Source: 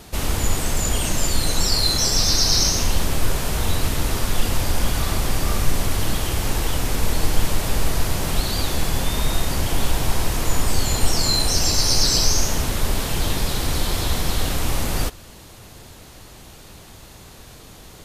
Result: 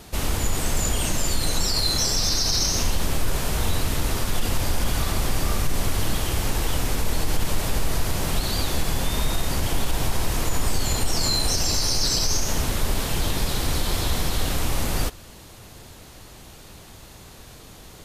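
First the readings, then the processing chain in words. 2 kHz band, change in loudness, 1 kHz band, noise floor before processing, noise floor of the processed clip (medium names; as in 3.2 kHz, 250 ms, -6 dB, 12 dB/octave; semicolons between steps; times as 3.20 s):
-2.5 dB, -3.0 dB, -2.5 dB, -43 dBFS, -45 dBFS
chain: peak limiter -10.5 dBFS, peak gain reduction 6.5 dB; trim -1.5 dB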